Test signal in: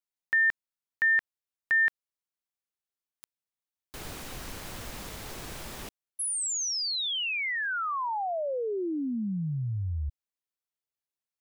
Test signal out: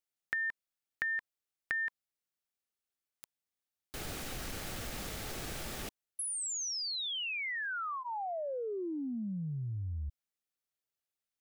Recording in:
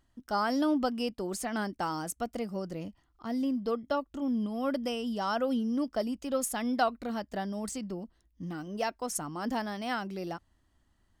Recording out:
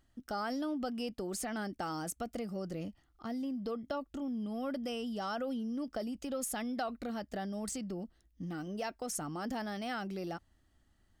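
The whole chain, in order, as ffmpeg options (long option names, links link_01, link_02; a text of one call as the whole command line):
ffmpeg -i in.wav -af "bandreject=frequency=1000:width=6.2,acompressor=threshold=-42dB:ratio=2.5:attack=22:release=21:knee=1:detection=peak" out.wav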